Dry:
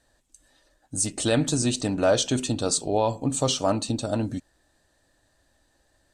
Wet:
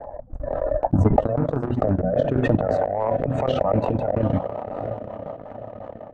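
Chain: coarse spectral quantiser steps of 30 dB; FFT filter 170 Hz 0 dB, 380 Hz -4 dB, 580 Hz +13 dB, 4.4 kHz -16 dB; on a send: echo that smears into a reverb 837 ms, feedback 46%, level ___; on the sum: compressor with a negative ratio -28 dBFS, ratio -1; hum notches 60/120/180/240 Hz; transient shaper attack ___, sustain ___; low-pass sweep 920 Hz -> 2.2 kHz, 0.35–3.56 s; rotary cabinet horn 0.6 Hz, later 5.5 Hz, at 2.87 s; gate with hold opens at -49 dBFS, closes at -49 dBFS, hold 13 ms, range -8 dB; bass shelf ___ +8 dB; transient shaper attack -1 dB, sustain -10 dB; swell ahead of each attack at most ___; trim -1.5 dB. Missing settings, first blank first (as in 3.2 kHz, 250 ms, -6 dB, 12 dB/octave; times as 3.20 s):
-15.5 dB, +11 dB, -8 dB, 160 Hz, 22 dB/s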